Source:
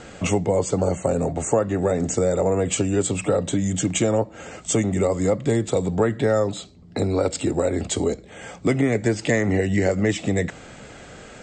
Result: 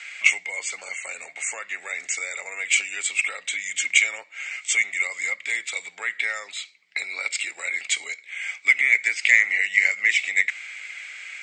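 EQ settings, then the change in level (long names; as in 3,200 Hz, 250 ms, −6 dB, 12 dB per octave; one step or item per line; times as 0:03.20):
high-pass with resonance 2,200 Hz, resonance Q 10
0.0 dB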